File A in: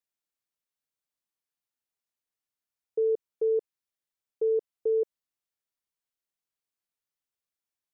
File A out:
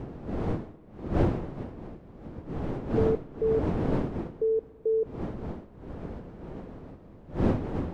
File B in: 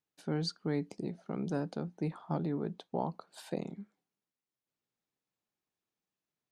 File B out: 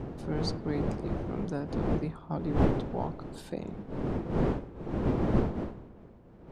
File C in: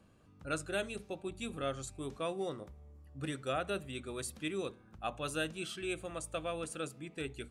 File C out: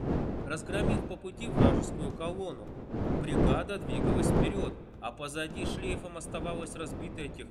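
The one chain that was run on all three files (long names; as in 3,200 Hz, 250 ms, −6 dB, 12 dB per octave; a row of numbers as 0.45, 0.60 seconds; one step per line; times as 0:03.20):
wind on the microphone 330 Hz −32 dBFS
spring reverb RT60 2.7 s, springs 50 ms, chirp 65 ms, DRR 20 dB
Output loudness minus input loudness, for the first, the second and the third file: −1.0, +5.0, +7.0 LU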